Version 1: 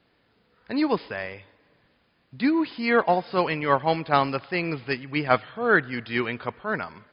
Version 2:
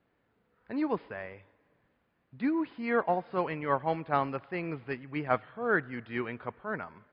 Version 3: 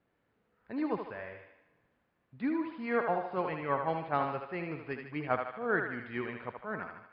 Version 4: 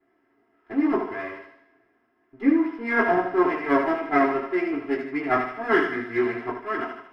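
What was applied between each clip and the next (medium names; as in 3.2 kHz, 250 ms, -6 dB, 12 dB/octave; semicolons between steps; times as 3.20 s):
low-pass 2 kHz 12 dB/octave; trim -7 dB
distance through air 60 m; thinning echo 76 ms, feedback 56%, high-pass 390 Hz, level -5 dB; trim -3 dB
comb filter that takes the minimum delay 3 ms; reverberation, pre-delay 3 ms, DRR -4 dB; trim -6.5 dB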